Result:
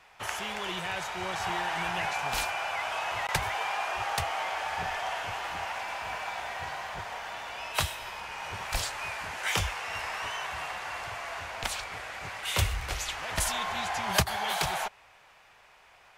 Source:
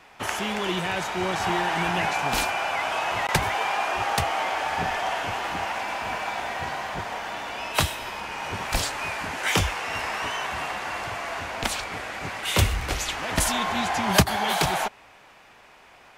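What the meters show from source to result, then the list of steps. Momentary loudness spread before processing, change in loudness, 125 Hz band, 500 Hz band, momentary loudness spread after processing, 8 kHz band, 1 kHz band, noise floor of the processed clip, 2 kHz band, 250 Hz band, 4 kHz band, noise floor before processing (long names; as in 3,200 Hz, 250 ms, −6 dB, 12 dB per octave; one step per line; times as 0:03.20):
8 LU, −6.0 dB, −7.5 dB, −8.0 dB, 8 LU, −5.0 dB, −6.0 dB, −58 dBFS, −5.0 dB, −12.5 dB, −5.0 dB, −52 dBFS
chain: parametric band 260 Hz −11 dB 1.3 octaves
level −5 dB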